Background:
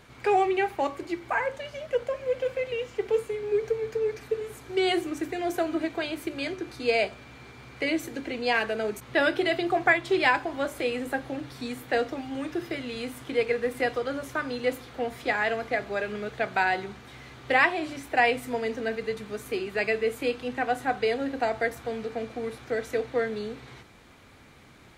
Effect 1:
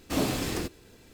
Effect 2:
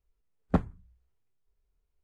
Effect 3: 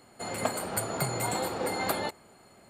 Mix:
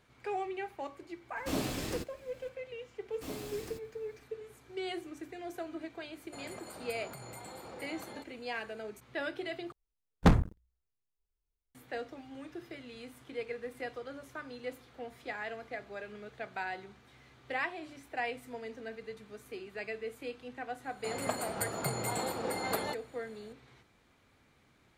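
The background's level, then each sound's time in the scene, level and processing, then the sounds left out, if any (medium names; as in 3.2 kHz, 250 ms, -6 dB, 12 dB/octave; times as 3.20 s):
background -13.5 dB
1.36 s: add 1 -6.5 dB
3.11 s: add 1 -15.5 dB + treble shelf 11 kHz +6.5 dB
6.13 s: add 3 -8 dB + compression 5:1, threshold -36 dBFS
9.72 s: replace with 2 -2 dB + waveshaping leveller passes 5
20.84 s: add 3 -4.5 dB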